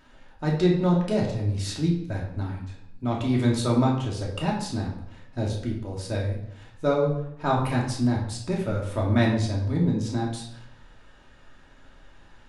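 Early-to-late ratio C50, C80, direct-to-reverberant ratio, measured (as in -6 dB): 4.5 dB, 8.0 dB, -3.0 dB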